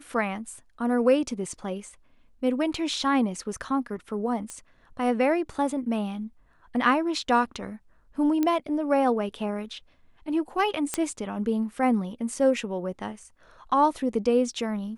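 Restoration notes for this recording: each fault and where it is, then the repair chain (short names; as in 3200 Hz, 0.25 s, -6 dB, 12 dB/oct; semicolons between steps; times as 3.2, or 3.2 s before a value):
4.5 pop -22 dBFS
8.43 pop -13 dBFS
10.94 pop -10 dBFS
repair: de-click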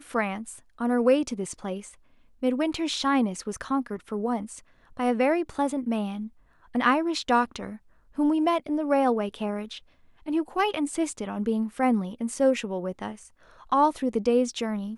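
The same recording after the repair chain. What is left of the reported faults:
none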